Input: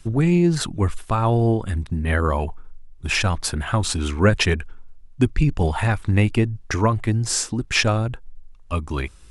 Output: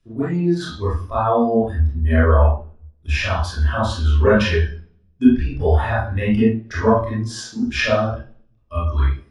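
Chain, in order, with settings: reverb RT60 0.60 s, pre-delay 25 ms, DRR -10 dB; spectral noise reduction 13 dB; gain -14 dB

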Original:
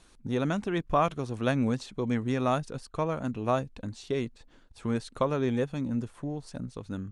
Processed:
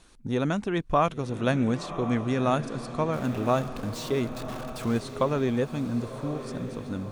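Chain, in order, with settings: 3.13–5 zero-crossing step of -39 dBFS; on a send: diffused feedback echo 1.066 s, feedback 54%, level -11 dB; on the sum: gain +2 dB

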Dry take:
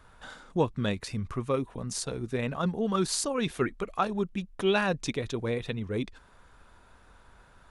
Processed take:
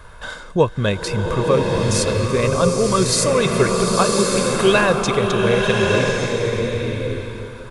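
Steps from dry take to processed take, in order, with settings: comb 1.9 ms, depth 46%; in parallel at -2 dB: compressor, threshold -38 dBFS, peak gain reduction 18 dB; on the sum: bloom reverb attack 1.15 s, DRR -0.5 dB; gain +8 dB

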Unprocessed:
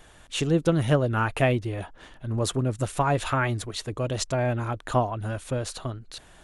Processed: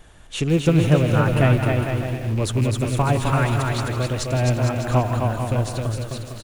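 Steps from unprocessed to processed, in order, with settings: rattling part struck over -27 dBFS, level -26 dBFS; low shelf 240 Hz +7 dB; on a send: bouncing-ball echo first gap 0.26 s, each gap 0.75×, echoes 5; on the sum: lo-fi delay 0.162 s, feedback 35%, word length 6-bit, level -11 dB

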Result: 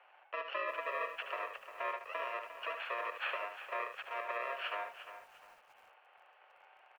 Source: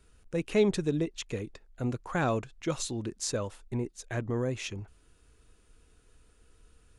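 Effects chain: FFT order left unsorted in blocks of 64 samples; compressor 8:1, threshold -37 dBFS, peak gain reduction 17.5 dB; hard clip -36 dBFS, distortion -14 dB; on a send: echo 75 ms -8 dB; on the sum: mistuned SSB +130 Hz 490–2500 Hz; lo-fi delay 0.352 s, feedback 35%, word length 12-bit, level -11 dB; gain +13.5 dB

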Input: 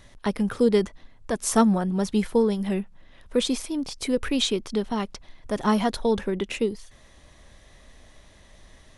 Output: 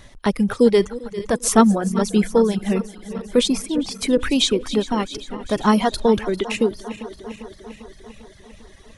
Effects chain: regenerating reverse delay 0.199 s, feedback 78%, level -12.5 dB; reverb removal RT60 1 s; gain +6 dB

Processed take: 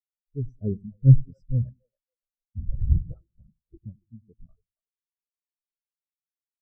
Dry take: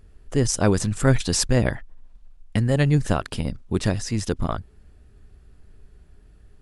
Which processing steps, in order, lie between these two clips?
2.58–3.77 LPC vocoder at 8 kHz whisper; split-band echo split 410 Hz, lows 96 ms, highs 0.279 s, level -6.5 dB; spectral expander 4:1; gain +1 dB

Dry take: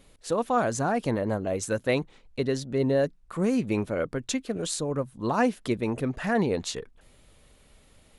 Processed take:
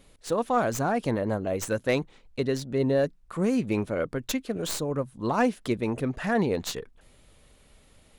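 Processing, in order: tracing distortion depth 0.1 ms

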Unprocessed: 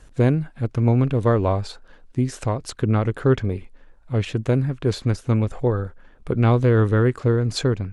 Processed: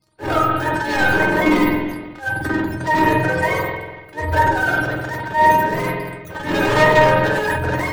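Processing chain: spectrum mirrored in octaves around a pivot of 450 Hz; auto swell 0.198 s; tilt shelf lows +5.5 dB, about 760 Hz; sample leveller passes 5; notches 50/100/150 Hz; reverb RT60 1.3 s, pre-delay 47 ms, DRR 1.5 dB; transient shaper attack -12 dB, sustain +7 dB; bell 980 Hz +5.5 dB 0.22 oct; resonator 310 Hz, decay 0.15 s, harmonics all, mix 90%; gain +4 dB

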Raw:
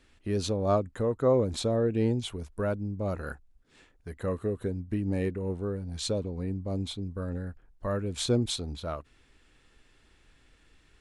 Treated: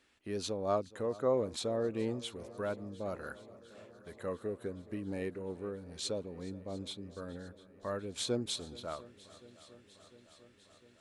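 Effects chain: HPF 330 Hz 6 dB/oct; swung echo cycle 0.701 s, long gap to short 1.5:1, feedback 67%, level -20.5 dB; gain -4.5 dB

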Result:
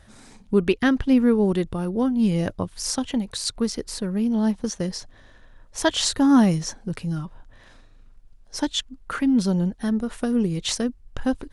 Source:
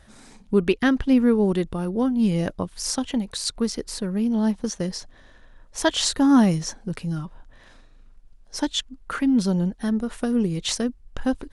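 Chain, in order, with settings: bell 100 Hz +6 dB 0.43 oct

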